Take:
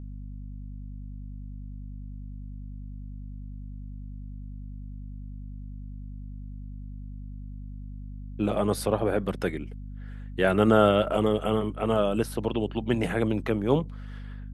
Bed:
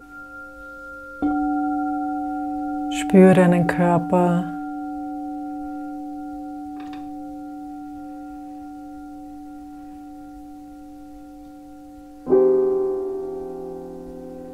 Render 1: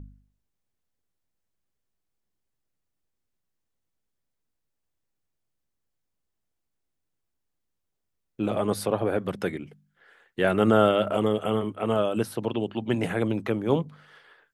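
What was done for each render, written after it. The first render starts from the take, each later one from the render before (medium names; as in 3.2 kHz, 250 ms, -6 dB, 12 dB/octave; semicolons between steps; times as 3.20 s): de-hum 50 Hz, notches 5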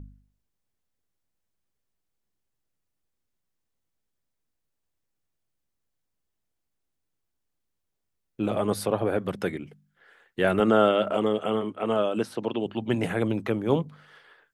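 10.60–12.66 s: band-pass 170–7600 Hz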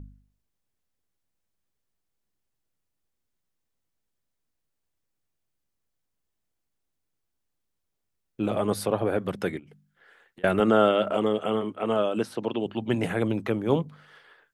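9.59–10.44 s: compression 12:1, threshold -46 dBFS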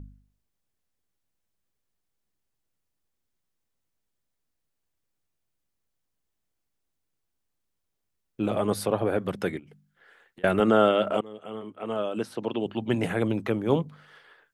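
11.21–12.65 s: fade in, from -22.5 dB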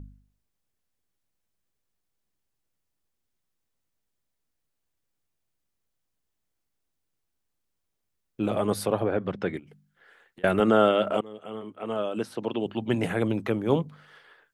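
9.03–9.54 s: distance through air 160 m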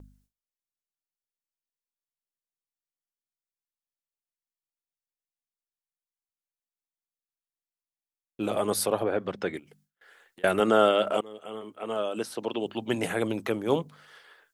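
gate with hold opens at -52 dBFS; tone controls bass -8 dB, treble +8 dB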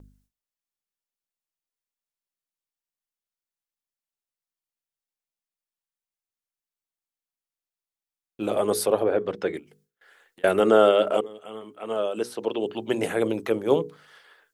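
hum notches 60/120/180/240/300/360/420/480 Hz; dynamic bell 440 Hz, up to +7 dB, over -36 dBFS, Q 1.4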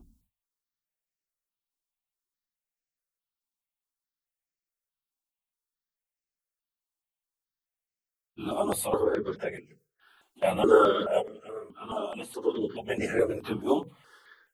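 phase randomisation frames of 50 ms; stepped phaser 4.7 Hz 490–3500 Hz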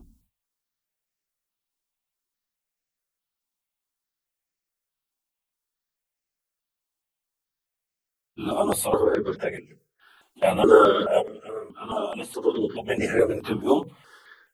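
trim +5 dB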